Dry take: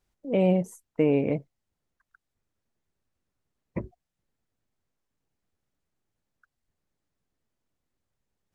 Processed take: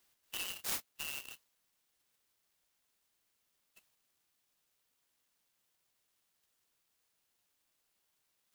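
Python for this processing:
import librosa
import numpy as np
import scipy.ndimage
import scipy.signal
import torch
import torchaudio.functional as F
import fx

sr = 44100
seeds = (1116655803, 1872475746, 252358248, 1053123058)

y = fx.brickwall_highpass(x, sr, low_hz=2600.0)
y = fx.high_shelf(y, sr, hz=7400.0, db=12.0)
y = fx.clock_jitter(y, sr, seeds[0], jitter_ms=0.054)
y = y * 10.0 ** (7.0 / 20.0)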